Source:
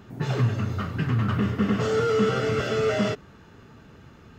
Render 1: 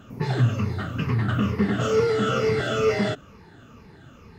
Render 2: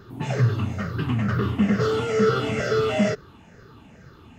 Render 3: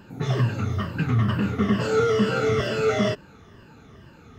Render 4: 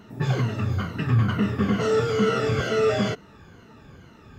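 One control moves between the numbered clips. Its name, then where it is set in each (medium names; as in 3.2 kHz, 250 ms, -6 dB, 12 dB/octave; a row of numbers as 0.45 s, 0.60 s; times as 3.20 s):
drifting ripple filter, ripples per octave: 0.85, 0.58, 1.3, 1.9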